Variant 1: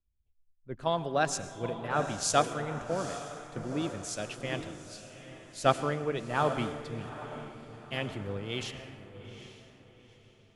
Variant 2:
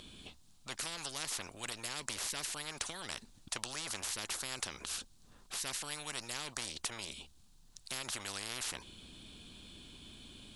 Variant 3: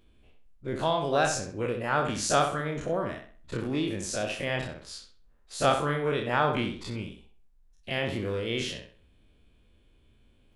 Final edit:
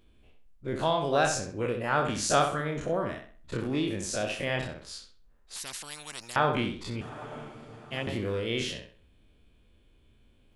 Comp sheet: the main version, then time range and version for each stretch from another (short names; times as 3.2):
3
5.56–6.36 from 2
7.01–8.07 from 1